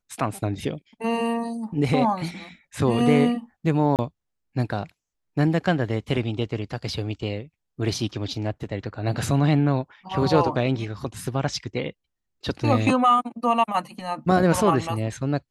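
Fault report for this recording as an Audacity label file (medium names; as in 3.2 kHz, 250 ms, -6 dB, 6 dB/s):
3.960000	3.990000	dropout 28 ms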